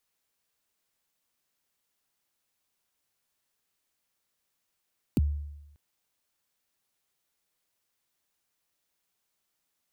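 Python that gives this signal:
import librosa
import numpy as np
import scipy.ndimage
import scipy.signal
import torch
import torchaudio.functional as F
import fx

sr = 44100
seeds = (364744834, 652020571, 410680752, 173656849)

y = fx.drum_kick(sr, seeds[0], length_s=0.59, level_db=-18.5, start_hz=340.0, end_hz=73.0, sweep_ms=27.0, decay_s=0.95, click=True)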